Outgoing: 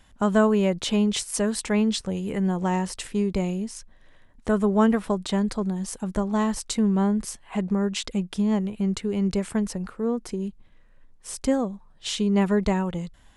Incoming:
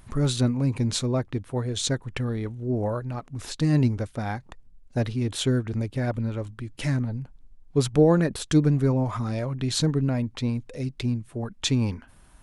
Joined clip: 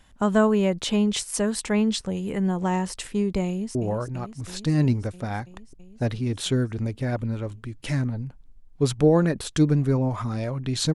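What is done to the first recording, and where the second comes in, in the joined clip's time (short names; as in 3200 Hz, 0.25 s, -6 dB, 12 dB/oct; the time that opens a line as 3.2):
outgoing
3.48–3.75 echo throw 0.33 s, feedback 80%, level -9.5 dB
3.75 switch to incoming from 2.7 s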